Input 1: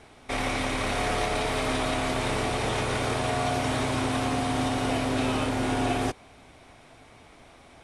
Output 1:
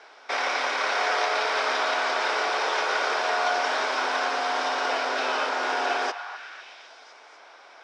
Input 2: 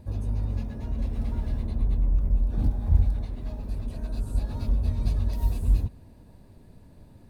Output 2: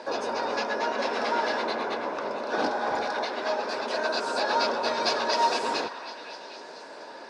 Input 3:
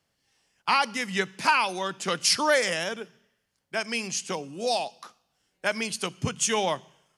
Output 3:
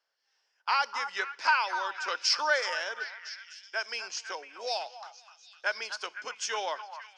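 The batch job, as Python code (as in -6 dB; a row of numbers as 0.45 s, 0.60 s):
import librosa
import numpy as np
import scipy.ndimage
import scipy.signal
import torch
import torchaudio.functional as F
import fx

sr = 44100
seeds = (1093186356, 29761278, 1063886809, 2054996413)

p1 = fx.cabinet(x, sr, low_hz=440.0, low_slope=24, high_hz=6100.0, hz=(950.0, 1500.0, 5200.0), db=(4, 9, 8))
p2 = p1 + fx.echo_stepped(p1, sr, ms=252, hz=1100.0, octaves=0.7, feedback_pct=70, wet_db=-7.5, dry=0)
y = p2 * 10.0 ** (-12 / 20.0) / np.max(np.abs(p2))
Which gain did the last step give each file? +1.5 dB, +19.5 dB, -8.0 dB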